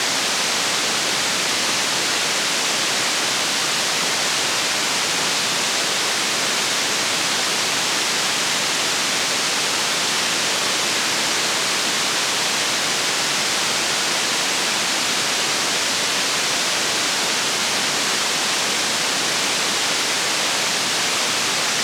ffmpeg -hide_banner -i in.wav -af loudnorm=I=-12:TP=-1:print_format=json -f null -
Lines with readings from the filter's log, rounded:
"input_i" : "-18.0",
"input_tp" : "-6.5",
"input_lra" : "0.0",
"input_thresh" : "-28.0",